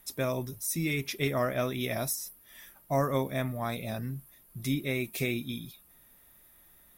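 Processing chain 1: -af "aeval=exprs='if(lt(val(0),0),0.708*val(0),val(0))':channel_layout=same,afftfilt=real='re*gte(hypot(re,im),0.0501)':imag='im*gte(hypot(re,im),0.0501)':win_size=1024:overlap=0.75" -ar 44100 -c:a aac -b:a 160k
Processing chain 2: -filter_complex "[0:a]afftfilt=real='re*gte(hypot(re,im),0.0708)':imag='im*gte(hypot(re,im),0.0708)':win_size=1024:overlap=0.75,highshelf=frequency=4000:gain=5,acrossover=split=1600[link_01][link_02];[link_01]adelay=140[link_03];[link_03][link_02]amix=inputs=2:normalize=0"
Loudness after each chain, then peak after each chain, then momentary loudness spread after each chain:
−34.5, −33.5 LKFS; −16.5, −17.5 dBFS; 10, 10 LU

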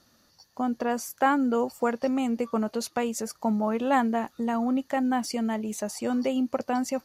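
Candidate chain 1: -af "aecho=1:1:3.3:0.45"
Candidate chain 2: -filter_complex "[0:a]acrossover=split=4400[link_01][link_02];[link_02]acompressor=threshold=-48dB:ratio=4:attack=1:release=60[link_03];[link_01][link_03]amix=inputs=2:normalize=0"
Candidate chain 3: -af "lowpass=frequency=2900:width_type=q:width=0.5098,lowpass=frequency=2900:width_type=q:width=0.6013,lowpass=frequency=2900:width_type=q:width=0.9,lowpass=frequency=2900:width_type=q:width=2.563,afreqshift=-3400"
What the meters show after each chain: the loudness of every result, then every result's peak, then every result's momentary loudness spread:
−26.5, −27.5, −24.0 LKFS; −11.5, −11.5, −10.5 dBFS; 6, 7, 6 LU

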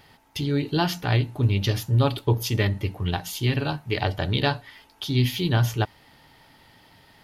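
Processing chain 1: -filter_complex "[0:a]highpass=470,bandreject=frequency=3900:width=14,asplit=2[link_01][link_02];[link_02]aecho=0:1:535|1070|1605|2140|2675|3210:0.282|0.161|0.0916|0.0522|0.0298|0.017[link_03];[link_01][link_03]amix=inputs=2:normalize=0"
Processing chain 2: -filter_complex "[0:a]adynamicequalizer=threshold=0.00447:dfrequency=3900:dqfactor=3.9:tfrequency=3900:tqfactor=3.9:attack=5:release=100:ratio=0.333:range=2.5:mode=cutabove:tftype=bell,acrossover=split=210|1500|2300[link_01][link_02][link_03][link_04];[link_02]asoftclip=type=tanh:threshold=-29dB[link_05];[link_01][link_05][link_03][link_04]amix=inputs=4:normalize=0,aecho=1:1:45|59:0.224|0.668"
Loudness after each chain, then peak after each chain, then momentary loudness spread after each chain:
−30.5, −24.0 LKFS; −7.5, −8.5 dBFS; 13, 8 LU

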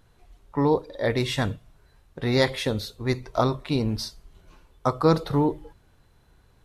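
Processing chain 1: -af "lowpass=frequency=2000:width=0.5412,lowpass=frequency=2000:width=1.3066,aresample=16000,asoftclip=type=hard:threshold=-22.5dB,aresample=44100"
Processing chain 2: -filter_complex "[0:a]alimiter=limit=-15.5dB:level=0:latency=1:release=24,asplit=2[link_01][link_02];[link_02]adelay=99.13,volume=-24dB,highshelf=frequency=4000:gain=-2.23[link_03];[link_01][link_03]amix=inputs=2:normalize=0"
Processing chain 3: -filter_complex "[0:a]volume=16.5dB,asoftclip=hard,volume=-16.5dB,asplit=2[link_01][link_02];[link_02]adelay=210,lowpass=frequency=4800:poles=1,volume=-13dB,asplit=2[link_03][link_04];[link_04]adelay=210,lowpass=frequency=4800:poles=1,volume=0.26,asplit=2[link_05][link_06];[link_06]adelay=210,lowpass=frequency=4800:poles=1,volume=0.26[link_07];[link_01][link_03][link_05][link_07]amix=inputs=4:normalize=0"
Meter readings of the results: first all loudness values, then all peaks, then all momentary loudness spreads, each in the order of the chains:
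−29.5, −28.0, −26.5 LKFS; −21.0, −15.0, −14.5 dBFS; 8, 8, 12 LU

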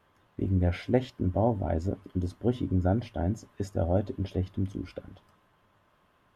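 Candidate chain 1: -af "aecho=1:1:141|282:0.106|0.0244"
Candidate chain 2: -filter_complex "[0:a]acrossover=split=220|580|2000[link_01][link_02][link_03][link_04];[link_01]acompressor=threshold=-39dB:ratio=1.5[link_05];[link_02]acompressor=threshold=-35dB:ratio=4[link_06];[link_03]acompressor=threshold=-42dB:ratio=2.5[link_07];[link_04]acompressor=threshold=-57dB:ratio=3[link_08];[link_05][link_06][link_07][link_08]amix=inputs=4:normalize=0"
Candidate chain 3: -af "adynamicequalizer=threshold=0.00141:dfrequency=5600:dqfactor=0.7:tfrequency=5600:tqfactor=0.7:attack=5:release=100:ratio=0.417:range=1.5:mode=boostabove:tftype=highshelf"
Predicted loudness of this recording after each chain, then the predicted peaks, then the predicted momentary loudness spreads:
−30.0, −35.0, −30.0 LKFS; −11.0, −16.5, −11.0 dBFS; 8, 6, 8 LU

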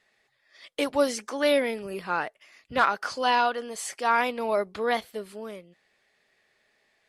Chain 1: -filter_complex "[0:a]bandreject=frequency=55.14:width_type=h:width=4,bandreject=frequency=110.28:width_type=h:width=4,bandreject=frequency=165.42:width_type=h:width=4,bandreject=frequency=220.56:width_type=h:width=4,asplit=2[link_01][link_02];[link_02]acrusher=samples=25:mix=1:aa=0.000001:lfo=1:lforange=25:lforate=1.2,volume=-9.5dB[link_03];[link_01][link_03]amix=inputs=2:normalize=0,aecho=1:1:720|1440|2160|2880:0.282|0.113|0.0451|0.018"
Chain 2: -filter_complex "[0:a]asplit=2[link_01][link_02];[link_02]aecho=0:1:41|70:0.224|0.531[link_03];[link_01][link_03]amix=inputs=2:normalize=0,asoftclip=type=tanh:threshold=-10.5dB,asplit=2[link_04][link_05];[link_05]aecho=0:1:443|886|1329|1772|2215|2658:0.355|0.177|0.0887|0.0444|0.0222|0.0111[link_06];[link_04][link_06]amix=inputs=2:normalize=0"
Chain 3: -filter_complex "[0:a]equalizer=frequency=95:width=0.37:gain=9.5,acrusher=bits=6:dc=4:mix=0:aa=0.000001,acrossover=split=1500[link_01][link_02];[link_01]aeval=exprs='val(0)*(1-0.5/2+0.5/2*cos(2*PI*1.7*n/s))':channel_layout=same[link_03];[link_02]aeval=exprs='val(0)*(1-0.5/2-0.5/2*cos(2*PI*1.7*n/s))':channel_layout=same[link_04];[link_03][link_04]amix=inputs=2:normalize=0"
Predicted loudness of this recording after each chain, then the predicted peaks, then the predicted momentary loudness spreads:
−25.5, −26.0, −28.0 LKFS; −7.5, −10.5, −10.5 dBFS; 20, 16, 12 LU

